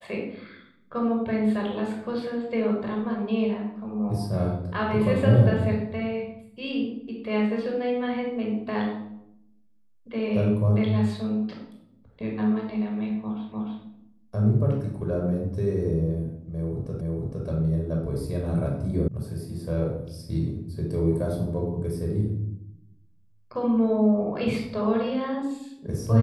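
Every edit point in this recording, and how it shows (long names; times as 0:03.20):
0:13.52: the same again, the last 0.3 s
0:17.01: the same again, the last 0.46 s
0:19.08: cut off before it has died away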